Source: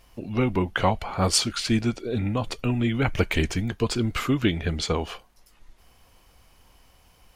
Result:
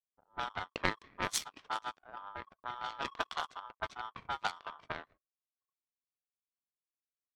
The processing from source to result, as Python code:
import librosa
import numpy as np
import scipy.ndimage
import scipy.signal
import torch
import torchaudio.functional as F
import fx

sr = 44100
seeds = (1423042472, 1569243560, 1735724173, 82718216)

y = x * np.sin(2.0 * np.pi * 1100.0 * np.arange(len(x)) / sr)
y = fx.power_curve(y, sr, exponent=2.0)
y = fx.env_lowpass(y, sr, base_hz=460.0, full_db=-32.0)
y = F.gain(torch.from_numpy(y), -1.0).numpy()